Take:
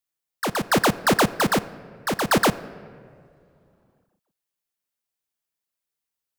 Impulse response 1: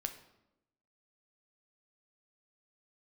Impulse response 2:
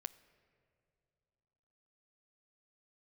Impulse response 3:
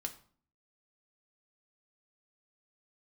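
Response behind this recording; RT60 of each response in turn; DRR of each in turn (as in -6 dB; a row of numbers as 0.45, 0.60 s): 2; 0.90, 2.8, 0.45 s; 6.0, 15.0, 4.0 dB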